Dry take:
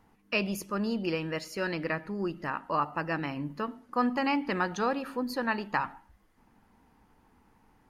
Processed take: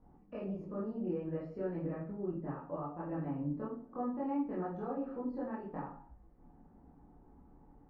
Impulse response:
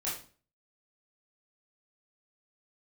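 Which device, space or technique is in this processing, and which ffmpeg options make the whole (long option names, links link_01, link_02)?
television next door: -filter_complex "[0:a]acompressor=threshold=-40dB:ratio=3,lowpass=580[link_01];[1:a]atrim=start_sample=2205[link_02];[link_01][link_02]afir=irnorm=-1:irlink=0,volume=1.5dB"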